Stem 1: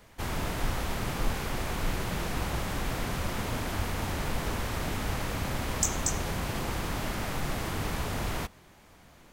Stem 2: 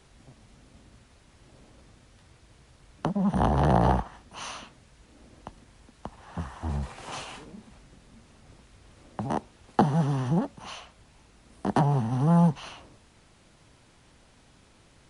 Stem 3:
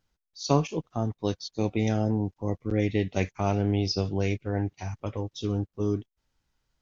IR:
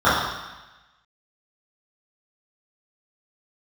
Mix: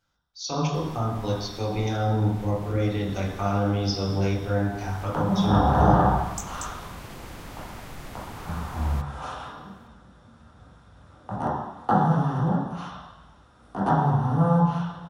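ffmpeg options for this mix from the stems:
-filter_complex "[0:a]adelay=550,volume=-8dB[a];[1:a]adelay=2100,volume=-10.5dB,asplit=2[b][c];[c]volume=-12dB[d];[2:a]equalizer=f=4.8k:w=0.35:g=7,alimiter=limit=-16dB:level=0:latency=1,volume=-6dB,asplit=3[e][f][g];[f]volume=-15.5dB[h];[g]apad=whole_len=435358[i];[a][i]sidechaincompress=threshold=-38dB:ratio=4:attack=43:release=549[j];[3:a]atrim=start_sample=2205[k];[d][h]amix=inputs=2:normalize=0[l];[l][k]afir=irnorm=-1:irlink=0[m];[j][b][e][m]amix=inputs=4:normalize=0"

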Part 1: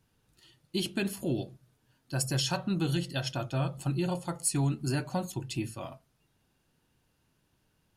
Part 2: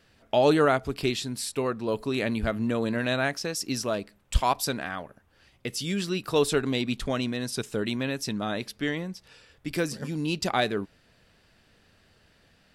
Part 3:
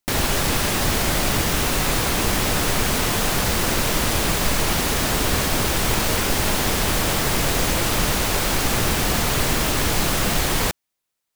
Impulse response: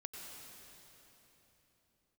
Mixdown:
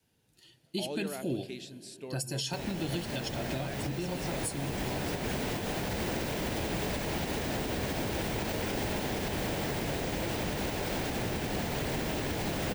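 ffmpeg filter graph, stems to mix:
-filter_complex "[0:a]adynamicequalizer=threshold=0.01:dfrequency=130:dqfactor=0.83:tfrequency=130:tqfactor=0.83:attack=5:release=100:ratio=0.375:range=2:mode=cutabove:tftype=bell,afade=t=out:st=4.04:d=0.71:silence=0.398107,asplit=3[a][b][c];[b]volume=-10.5dB[d];[1:a]lowpass=9.7k,adelay=450,volume=-14dB[e];[2:a]equalizer=f=12k:t=o:w=2.8:g=-13,adelay=2450,volume=2.5dB[f];[c]apad=whole_len=608884[g];[f][g]sidechaincompress=threshold=-40dB:ratio=8:attack=10:release=730[h];[3:a]atrim=start_sample=2205[i];[d][i]afir=irnorm=-1:irlink=0[j];[a][e][h][j]amix=inputs=4:normalize=0,highpass=f=110:p=1,equalizer=f=1.2k:t=o:w=0.58:g=-9.5,alimiter=limit=-23.5dB:level=0:latency=1:release=295"

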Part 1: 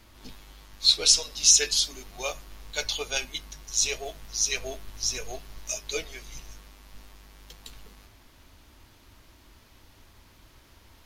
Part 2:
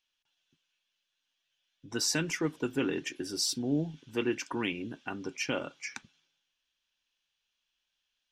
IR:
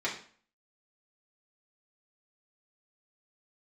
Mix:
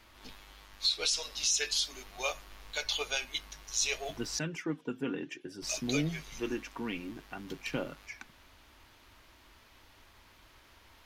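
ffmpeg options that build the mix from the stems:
-filter_complex "[0:a]equalizer=f=390:w=0.54:g=-4.5,volume=1.5dB,asplit=3[a][b][c];[a]atrim=end=4.39,asetpts=PTS-STARTPTS,afade=t=out:st=4.386:d=0.004:c=hsin[d];[b]atrim=start=4.39:end=5.62,asetpts=PTS-STARTPTS,volume=0[e];[c]atrim=start=5.62,asetpts=PTS-STARTPTS,afade=t=in:d=0.004:c=hsin[f];[d][e][f]concat=n=3:v=0:a=1[g];[1:a]equalizer=f=150:w=1.1:g=12.5,aphaser=in_gain=1:out_gain=1:delay=4.4:decay=0.36:speed=0.55:type=sinusoidal,adelay=2250,volume=-6dB[h];[g][h]amix=inputs=2:normalize=0,bass=f=250:g=-9,treble=f=4k:g=-7,alimiter=limit=-19dB:level=0:latency=1:release=158"

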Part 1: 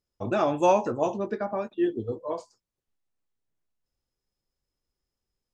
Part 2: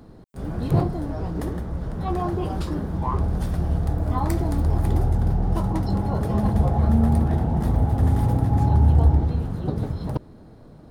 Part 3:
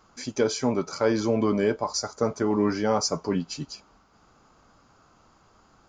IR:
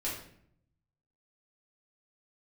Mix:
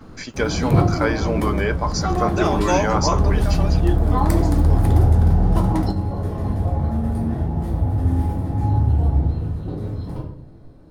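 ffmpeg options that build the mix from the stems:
-filter_complex "[0:a]equalizer=f=5.6k:w=0.61:g=11.5,adelay=2050,volume=-0.5dB[a];[1:a]volume=2.5dB,asplit=2[b][c];[c]volume=-9.5dB[d];[2:a]equalizer=f=1.8k:w=0.43:g=14.5,volume=-5dB,asplit=2[e][f];[f]apad=whole_len=481090[g];[b][g]sidechaingate=range=-33dB:threshold=-59dB:ratio=16:detection=peak[h];[3:a]atrim=start_sample=2205[i];[d][i]afir=irnorm=-1:irlink=0[j];[a][h][e][j]amix=inputs=4:normalize=0"

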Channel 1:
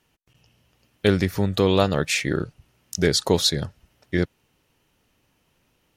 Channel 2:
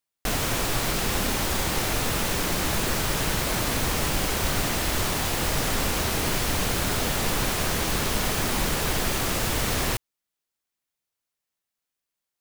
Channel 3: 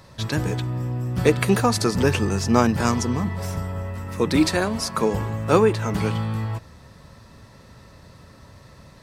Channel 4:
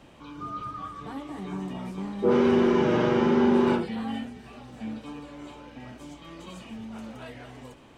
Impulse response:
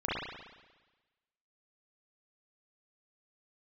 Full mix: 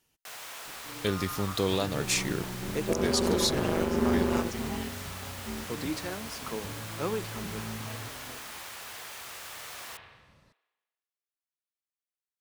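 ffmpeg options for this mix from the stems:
-filter_complex "[0:a]bass=f=250:g=-1,treble=f=4k:g=9,volume=-8.5dB[a];[1:a]highpass=810,volume=-17dB,asplit=2[b][c];[c]volume=-9.5dB[d];[2:a]adelay=1500,volume=-15.5dB[e];[3:a]tremolo=f=170:d=0.974,adelay=650,volume=0dB[f];[4:a]atrim=start_sample=2205[g];[d][g]afir=irnorm=-1:irlink=0[h];[a][b][e][f][h]amix=inputs=5:normalize=0,alimiter=limit=-14.5dB:level=0:latency=1:release=213"

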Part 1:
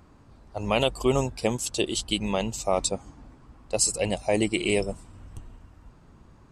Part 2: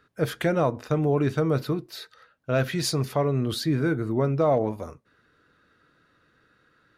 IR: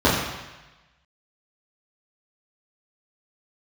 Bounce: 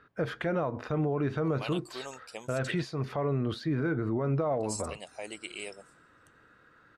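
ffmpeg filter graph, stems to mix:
-filter_complex "[0:a]highpass=f=990:p=1,adelay=900,volume=-11dB,asplit=3[a][b][c];[a]atrim=end=2.81,asetpts=PTS-STARTPTS,afade=t=out:st=2.806:d=0.004:c=hsin[d];[b]atrim=start=2.81:end=4.2,asetpts=PTS-STARTPTS,volume=0[e];[c]atrim=start=4.2,asetpts=PTS-STARTPTS,afade=t=in:d=0.004:c=hsin[f];[d][e][f]concat=n=3:v=0:a=1[g];[1:a]crystalizer=i=9:c=0,acompressor=threshold=-20dB:ratio=6,lowpass=1.3k,volume=1dB[h];[g][h]amix=inputs=2:normalize=0,alimiter=limit=-21.5dB:level=0:latency=1:release=73"

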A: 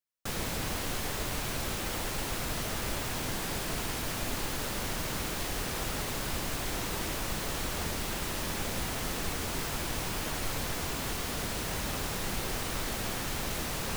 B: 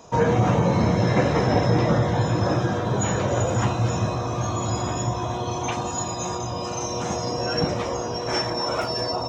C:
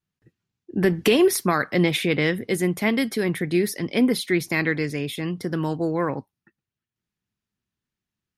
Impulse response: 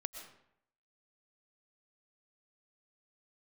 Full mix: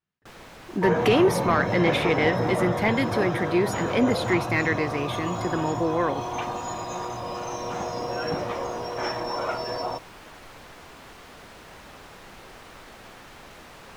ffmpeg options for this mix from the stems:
-filter_complex "[0:a]volume=-10.5dB[a];[1:a]adelay=700,volume=-4.5dB[b];[2:a]volume=-1dB,asplit=2[c][d];[d]apad=whole_len=615996[e];[a][e]sidechaincompress=threshold=-23dB:ratio=8:attack=9.6:release=259[f];[f][b][c]amix=inputs=3:normalize=0,asplit=2[g][h];[h]highpass=f=720:p=1,volume=10dB,asoftclip=type=tanh:threshold=-8.5dB[i];[g][i]amix=inputs=2:normalize=0,lowpass=f=1.6k:p=1,volume=-6dB"

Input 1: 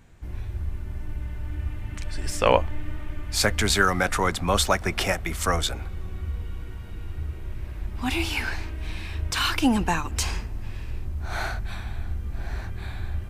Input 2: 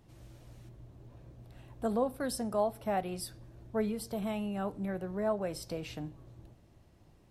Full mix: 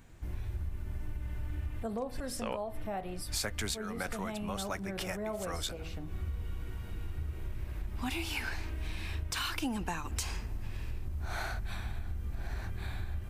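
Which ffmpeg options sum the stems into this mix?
-filter_complex "[0:a]highshelf=f=9.9k:g=6.5,volume=-3dB[a];[1:a]dynaudnorm=f=210:g=13:m=7dB,bandreject=f=81.07:t=h:w=4,bandreject=f=162.14:t=h:w=4,bandreject=f=243.21:t=h:w=4,bandreject=f=324.28:t=h:w=4,bandreject=f=405.35:t=h:w=4,bandreject=f=486.42:t=h:w=4,bandreject=f=567.49:t=h:w=4,bandreject=f=648.56:t=h:w=4,bandreject=f=729.63:t=h:w=4,bandreject=f=810.7:t=h:w=4,bandreject=f=891.77:t=h:w=4,bandreject=f=972.84:t=h:w=4,bandreject=f=1.05391k:t=h:w=4,bandreject=f=1.13498k:t=h:w=4,bandreject=f=1.21605k:t=h:w=4,bandreject=f=1.29712k:t=h:w=4,bandreject=f=1.37819k:t=h:w=4,bandreject=f=1.45926k:t=h:w=4,bandreject=f=1.54033k:t=h:w=4,bandreject=f=1.6214k:t=h:w=4,bandreject=f=1.70247k:t=h:w=4,bandreject=f=1.78354k:t=h:w=4,bandreject=f=1.86461k:t=h:w=4,bandreject=f=1.94568k:t=h:w=4,bandreject=f=2.02675k:t=h:w=4,bandreject=f=2.10782k:t=h:w=4,bandreject=f=2.18889k:t=h:w=4,bandreject=f=2.26996k:t=h:w=4,bandreject=f=2.35103k:t=h:w=4,volume=-9.5dB,asplit=2[b][c];[c]apad=whole_len=586504[d];[a][d]sidechaincompress=threshold=-49dB:ratio=6:attack=9.3:release=113[e];[e][b]amix=inputs=2:normalize=0,acompressor=threshold=-32dB:ratio=6"

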